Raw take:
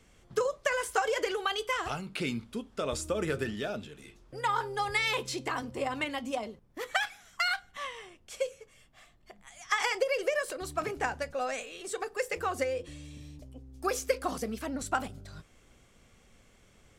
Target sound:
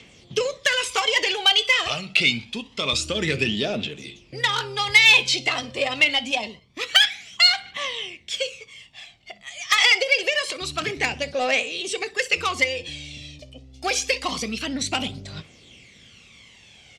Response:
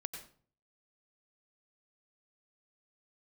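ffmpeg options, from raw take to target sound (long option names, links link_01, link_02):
-filter_complex "[0:a]aecho=1:1:63|126|189:0.0891|0.0401|0.018,aphaser=in_gain=1:out_gain=1:delay=1.7:decay=0.53:speed=0.26:type=triangular,highpass=100,lowpass=3800,highshelf=frequency=2700:gain=-9.5,asplit=2[link_01][link_02];[link_02]asoftclip=type=tanh:threshold=-31dB,volume=-7dB[link_03];[link_01][link_03]amix=inputs=2:normalize=0,aexciter=amount=12.5:drive=2.8:freq=2200,volume=3dB"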